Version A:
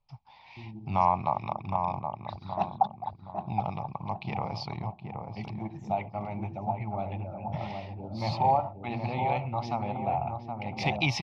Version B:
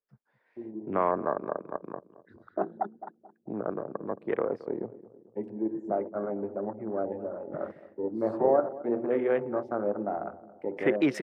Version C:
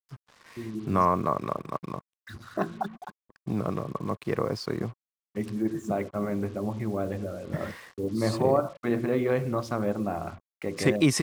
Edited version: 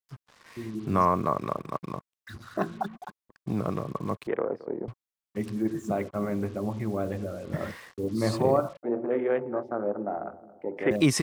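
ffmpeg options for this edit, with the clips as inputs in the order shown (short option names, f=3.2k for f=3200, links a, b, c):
-filter_complex "[1:a]asplit=2[a][b];[2:a]asplit=3[c][d][e];[c]atrim=end=4.272[f];[a]atrim=start=4.268:end=4.882[g];[d]atrim=start=4.878:end=8.832[h];[b]atrim=start=8.828:end=10.912[i];[e]atrim=start=10.908[j];[f][g]acrossfade=d=0.004:c1=hsin:c2=hsin[k];[k][h]acrossfade=d=0.004:c1=hsin:c2=hsin[l];[l][i]acrossfade=d=0.004:c1=hsin:c2=hsin[m];[m][j]acrossfade=d=0.004:c1=hsin:c2=hsin"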